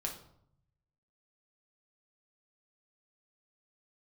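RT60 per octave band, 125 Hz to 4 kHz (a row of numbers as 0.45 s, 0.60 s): 1.3 s, 0.90 s, 0.70 s, 0.65 s, 0.50 s, 0.45 s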